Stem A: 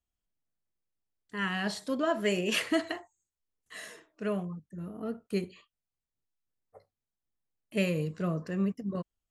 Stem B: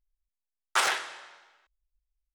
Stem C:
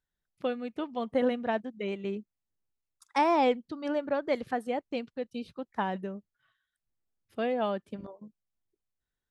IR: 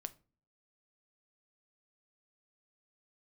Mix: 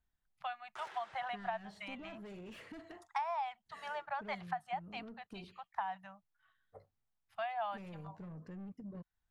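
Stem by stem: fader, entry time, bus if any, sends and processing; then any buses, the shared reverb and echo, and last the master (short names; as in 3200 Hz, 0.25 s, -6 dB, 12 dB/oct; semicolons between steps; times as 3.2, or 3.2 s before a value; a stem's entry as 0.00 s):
0.0 dB, 0.00 s, bus A, no send, soft clip -32.5 dBFS, distortion -8 dB; auto duck -8 dB, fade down 0.35 s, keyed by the third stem
-14.5 dB, 0.00 s, bus A, no send, transient shaper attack -5 dB, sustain +6 dB
+0.5 dB, 0.00 s, no bus, no send, elliptic band-stop 170–710 Hz, stop band 40 dB; resonant low shelf 520 Hz -10.5 dB, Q 1.5
bus A: 0.0 dB, tone controls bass +6 dB, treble -1 dB; compressor 4:1, threshold -48 dBFS, peak gain reduction 14.5 dB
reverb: off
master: high shelf 3500 Hz -11 dB; compressor 12:1, threshold -34 dBFS, peak gain reduction 14 dB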